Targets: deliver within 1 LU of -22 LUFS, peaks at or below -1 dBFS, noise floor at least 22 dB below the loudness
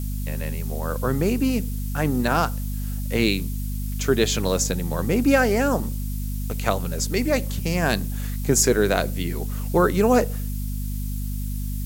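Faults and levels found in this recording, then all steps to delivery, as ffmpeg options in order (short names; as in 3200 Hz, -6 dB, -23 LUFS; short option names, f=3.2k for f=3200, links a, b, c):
hum 50 Hz; harmonics up to 250 Hz; hum level -25 dBFS; noise floor -27 dBFS; noise floor target -46 dBFS; loudness -23.5 LUFS; peak -4.5 dBFS; loudness target -22.0 LUFS
-> -af "bandreject=f=50:t=h:w=4,bandreject=f=100:t=h:w=4,bandreject=f=150:t=h:w=4,bandreject=f=200:t=h:w=4,bandreject=f=250:t=h:w=4"
-af "afftdn=nr=19:nf=-27"
-af "volume=1.5dB"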